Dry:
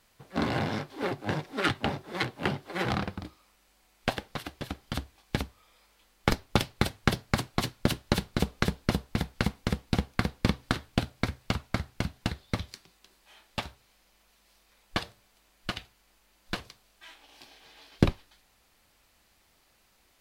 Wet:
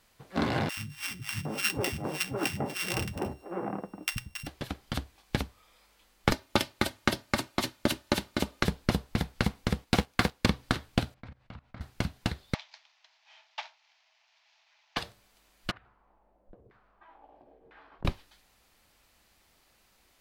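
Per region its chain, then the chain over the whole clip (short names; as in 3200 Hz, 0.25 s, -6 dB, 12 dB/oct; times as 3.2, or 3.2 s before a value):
0.69–4.47 sample sorter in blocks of 16 samples + three bands offset in time highs, lows, mids 80/760 ms, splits 180/1300 Hz
6.32–8.63 HPF 170 Hz 6 dB/oct + comb 3.3 ms, depth 45%
9.84–10.46 low shelf 250 Hz -9.5 dB + sample leveller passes 2
11.14–11.81 Bessel low-pass 2200 Hz + bell 400 Hz -9.5 dB 0.27 oct + level quantiser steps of 22 dB
12.54–14.97 CVSD 32 kbps + rippled Chebyshev high-pass 620 Hz, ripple 6 dB
15.71–18.05 compressor 10:1, threshold -49 dBFS + LFO low-pass saw down 1 Hz 420–1600 Hz
whole clip: dry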